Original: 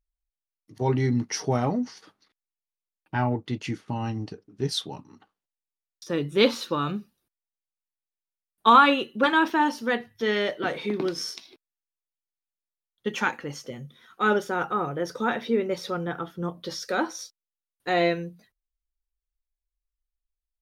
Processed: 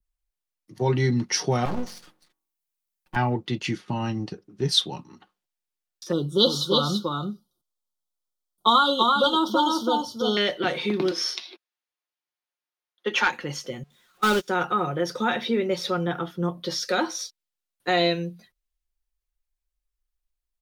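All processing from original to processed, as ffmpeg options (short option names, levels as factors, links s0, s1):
-filter_complex "[0:a]asettb=1/sr,asplit=3[s0][s1][s2];[s0]atrim=end=1.654[s3];[s1]atrim=start=1.65:end=3.16,asetpts=PTS-STARTPTS,afade=t=in:d=0.004:c=qsin,afade=t=out:st=1.506:d=0.004:c=qsin,bandreject=f=45.18:t=h:w=4,bandreject=f=90.36:t=h:w=4,bandreject=f=135.54:t=h:w=4,bandreject=f=180.72:t=h:w=4,bandreject=f=225.9:t=h:w=4,bandreject=f=271.08:t=h:w=4,bandreject=f=316.26:t=h:w=4,bandreject=f=361.44:t=h:w=4,bandreject=f=406.62:t=h:w=4,bandreject=f=451.8:t=h:w=4,bandreject=f=496.98:t=h:w=4,bandreject=f=542.16:t=h:w=4,bandreject=f=587.34:t=h:w=4,bandreject=f=632.52:t=h:w=4,bandreject=f=677.7:t=h:w=4,bandreject=f=722.88:t=h:w=4,bandreject=f=768.06:t=h:w=4,bandreject=f=813.24:t=h:w=4,bandreject=f=858.42:t=h:w=4,bandreject=f=903.6:t=h:w=4,bandreject=f=948.78:t=h:w=4,bandreject=f=993.96:t=h:w=4,bandreject=f=1039.14:t=h:w=4,bandreject=f=1084.32:t=h:w=4,bandreject=f=1129.5:t=h:w=4,aeval=exprs='max(val(0),0)':c=same,highshelf=f=8200:g=9.5[s4];[s2]atrim=start=3.156[s5];[s3][s4]acrossfade=d=0.004:c1=hsin:c2=qsin[s6];[s6][s5]acrossfade=d=0.004:c1=qsin:c2=hsin,asettb=1/sr,asplit=3[s7][s8][s9];[s7]atrim=end=6.124[s10];[s8]atrim=start=6.12:end=10.37,asetpts=PTS-STARTPTS,afade=t=in:d=0.004:c=qsin,afade=t=out:st=4.246:d=0.004:c=qsin,asuperstop=centerf=2100:order=20:qfactor=1.3,aecho=1:1:333:0.596,atrim=end_sample=187425[s11];[s9]atrim=start=10.366[s12];[s10][s11]acrossfade=d=0.004:c1=hsin:c2=qsin[s13];[s13][s12]acrossfade=d=0.004:c1=qsin:c2=hsin,asettb=1/sr,asplit=3[s14][s15][s16];[s14]atrim=end=11.114[s17];[s15]atrim=start=11.11:end=13.3,asetpts=PTS-STARTPTS,afade=t=in:d=0.004:c=qsin,afade=t=out:st=2.186:d=0.004:c=qsin,highpass=f=240:w=0.5412,highpass=f=240:w=1.3066,bandreject=f=7800:w=5.2,asplit=2[s18][s19];[s19]highpass=f=720:p=1,volume=3.55,asoftclip=type=tanh:threshold=0.355[s20];[s18][s20]amix=inputs=2:normalize=0,lowpass=f=2400:p=1,volume=0.501[s21];[s16]atrim=start=13.296[s22];[s17][s21]acrossfade=d=0.004:c1=hsin:c2=qsin[s23];[s23][s22]acrossfade=d=0.004:c1=qsin:c2=hsin,asettb=1/sr,asplit=3[s24][s25][s26];[s24]atrim=end=13.834[s27];[s25]atrim=start=13.83:end=14.48,asetpts=PTS-STARTPTS,afade=t=in:d=0.004:c=qsin,afade=t=out:st=0.646:d=0.004:c=qsin,aeval=exprs='val(0)+0.5*0.0531*sgn(val(0))':c=same,agate=range=0.0178:threshold=0.0794:ratio=16:release=100:detection=peak[s28];[s26]atrim=start=14.476[s29];[s27][s28]acrossfade=d=0.004:c1=hsin:c2=qsin[s30];[s30][s29]acrossfade=d=0.004:c1=qsin:c2=hsin,aecho=1:1:5.6:0.36,adynamicequalizer=threshold=0.00794:dfrequency=3700:dqfactor=0.96:tfrequency=3700:tqfactor=0.96:attack=5:release=100:ratio=0.375:range=3:mode=boostabove:tftype=bell,acrossover=split=140|3000[s31][s32][s33];[s32]acompressor=threshold=0.0631:ratio=2[s34];[s31][s34][s33]amix=inputs=3:normalize=0,volume=1.33"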